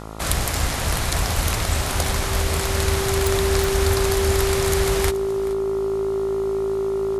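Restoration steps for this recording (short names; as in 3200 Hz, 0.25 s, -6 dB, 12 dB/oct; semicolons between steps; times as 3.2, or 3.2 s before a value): de-click; de-hum 53.9 Hz, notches 26; notch 390 Hz, Q 30; inverse comb 0.427 s -18.5 dB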